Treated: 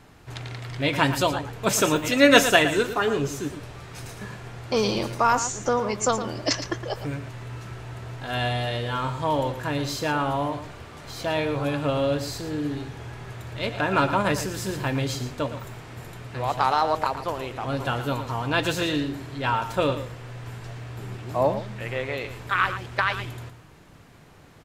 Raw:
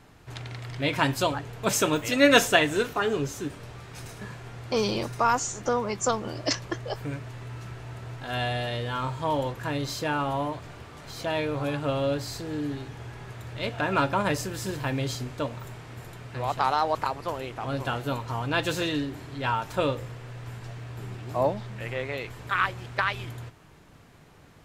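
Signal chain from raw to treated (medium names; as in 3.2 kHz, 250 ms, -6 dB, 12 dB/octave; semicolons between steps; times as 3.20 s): delay 114 ms -11 dB; trim +2.5 dB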